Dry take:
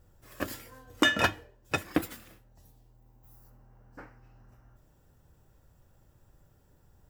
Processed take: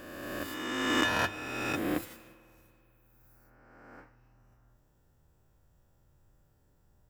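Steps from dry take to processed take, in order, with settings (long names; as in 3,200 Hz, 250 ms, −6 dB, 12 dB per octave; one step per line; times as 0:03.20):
peak hold with a rise ahead of every peak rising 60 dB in 1.93 s
spring reverb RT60 2.8 s, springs 48 ms, chirp 60 ms, DRR 19 dB
level −8.5 dB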